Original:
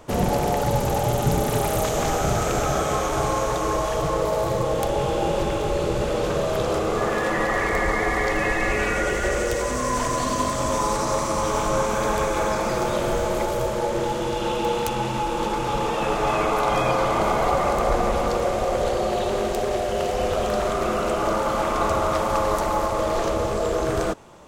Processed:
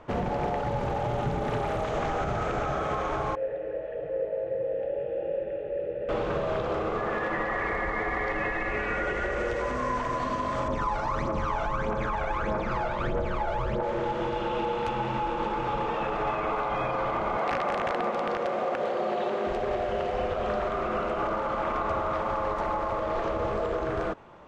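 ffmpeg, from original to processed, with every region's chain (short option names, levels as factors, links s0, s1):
-filter_complex "[0:a]asettb=1/sr,asplit=3[s0][s1][s2];[s0]atrim=end=3.354[s3];[s1]atrim=start=3.35:end=6.09,asetpts=PTS-STARTPTS,afade=t=in:d=0.004:c=qsin,afade=t=out:st=2.736:d=0.004:c=qsin,asplit=3[s4][s5][s6];[s4]bandpass=f=530:t=q:w=8,volume=1[s7];[s5]bandpass=f=1840:t=q:w=8,volume=0.501[s8];[s6]bandpass=f=2480:t=q:w=8,volume=0.355[s9];[s7][s8][s9]amix=inputs=3:normalize=0,aemphasis=mode=reproduction:type=riaa[s10];[s2]atrim=start=6.086[s11];[s3][s10]acrossfade=d=0.004:c1=hsin:c2=qsin[s12];[s12][s11]acrossfade=d=0.004:c1=qsin:c2=hsin,asettb=1/sr,asplit=3[s13][s14][s15];[s13]atrim=end=10.684[s16];[s14]atrim=start=10.68:end=13.83,asetpts=PTS-STARTPTS,afade=t=in:d=0.004:c=qsin,afade=t=out:st=3.146:d=0.004:c=qsin,highshelf=f=8700:g=-11.5,aphaser=in_gain=1:out_gain=1:delay=1.5:decay=0.67:speed=1.6:type=triangular[s17];[s15]atrim=start=13.826[s18];[s16][s17]acrossfade=d=0.004:c1=hsin:c2=qsin[s19];[s19][s18]acrossfade=d=0.004:c1=qsin:c2=hsin,asettb=1/sr,asplit=3[s20][s21][s22];[s20]atrim=end=17.374[s23];[s21]atrim=start=17.37:end=19.47,asetpts=PTS-STARTPTS,afade=t=in:d=0.004:c=qsin,afade=t=out:st=2.096:d=0.004:c=qsin,highpass=f=160:w=0.5412,highpass=f=160:w=1.3066,aeval=exprs='(mod(4.47*val(0)+1,2)-1)/4.47':c=same[s24];[s22]atrim=start=19.466[s25];[s23][s24]acrossfade=d=0.004:c1=hsin:c2=qsin[s26];[s26][s25]acrossfade=d=0.004:c1=qsin:c2=hsin,lowpass=1800,tiltshelf=f=1300:g=-4.5,alimiter=limit=0.1:level=0:latency=1:release=93"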